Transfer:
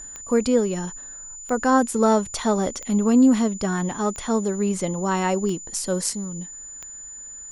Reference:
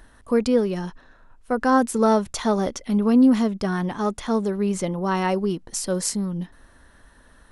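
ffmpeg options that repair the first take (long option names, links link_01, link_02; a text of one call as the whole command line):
ffmpeg -i in.wav -af "adeclick=threshold=4,bandreject=frequency=7000:width=30,asetnsamples=nb_out_samples=441:pad=0,asendcmd='6.13 volume volume 5dB',volume=0dB" out.wav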